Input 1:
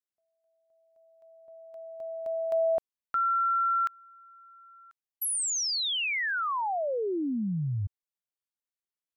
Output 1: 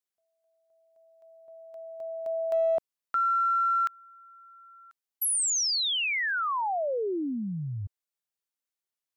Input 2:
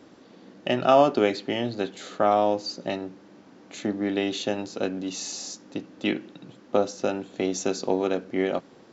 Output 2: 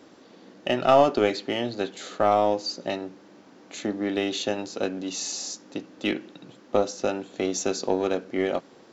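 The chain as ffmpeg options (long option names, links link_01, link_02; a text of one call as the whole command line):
ffmpeg -i in.wav -filter_complex "[0:a]bass=frequency=250:gain=-5,treble=frequency=4000:gain=2,asplit=2[link_01][link_02];[link_02]aeval=exprs='clip(val(0),-1,0.0631)':channel_layout=same,volume=-7.5dB[link_03];[link_01][link_03]amix=inputs=2:normalize=0,volume=-2dB" out.wav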